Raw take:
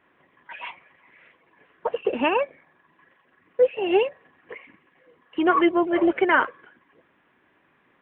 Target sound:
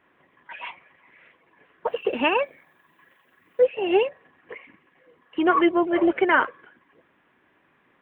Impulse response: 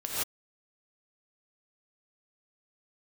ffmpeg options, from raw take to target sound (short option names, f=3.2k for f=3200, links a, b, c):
-filter_complex "[0:a]asettb=1/sr,asplit=3[a][b][c];[a]atrim=end=1.874[d];[b]atrim=start=1.87:end=3.62,asetpts=PTS-STARTPTS,afade=t=in:d=0.004:c=qsin,afade=t=out:st=1.746:d=0.004:c=qsin,aemphasis=mode=production:type=75fm[e];[c]atrim=start=3.616[f];[d][e]acrossfade=d=0.004:c1=hsin:c2=qsin[g];[g][f]acrossfade=d=0.004:c1=qsin:c2=hsin"